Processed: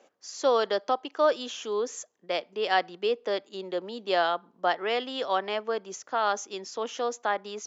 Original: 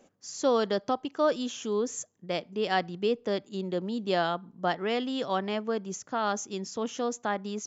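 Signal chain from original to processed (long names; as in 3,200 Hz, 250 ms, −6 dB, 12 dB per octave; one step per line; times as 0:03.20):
three-way crossover with the lows and the highs turned down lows −22 dB, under 360 Hz, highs −22 dB, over 6,600 Hz
level +3.5 dB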